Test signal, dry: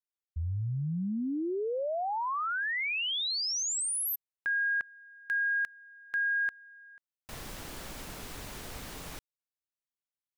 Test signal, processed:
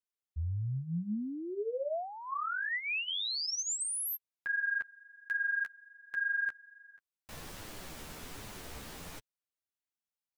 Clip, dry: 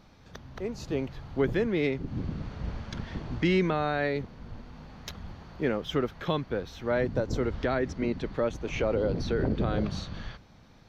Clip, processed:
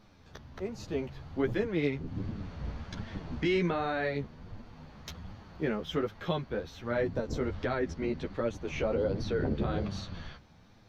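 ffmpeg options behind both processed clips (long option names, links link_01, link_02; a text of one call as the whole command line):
ffmpeg -i in.wav -af "flanger=delay=8.8:depth=5.6:regen=7:speed=1.3:shape=triangular" out.wav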